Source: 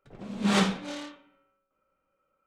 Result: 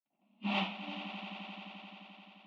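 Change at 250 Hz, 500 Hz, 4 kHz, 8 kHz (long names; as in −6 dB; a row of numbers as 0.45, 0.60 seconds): −11.5 dB, −12.5 dB, −6.0 dB, below −30 dB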